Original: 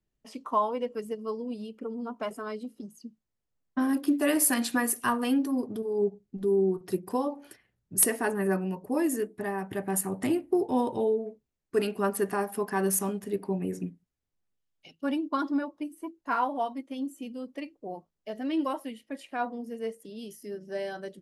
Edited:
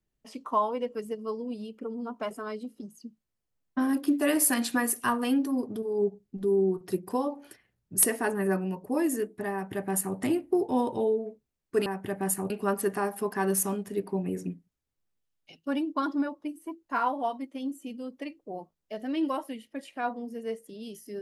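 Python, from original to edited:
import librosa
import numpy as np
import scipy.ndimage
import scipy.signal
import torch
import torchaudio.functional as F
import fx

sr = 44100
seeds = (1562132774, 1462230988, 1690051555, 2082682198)

y = fx.edit(x, sr, fx.duplicate(start_s=9.53, length_s=0.64, to_s=11.86), tone=tone)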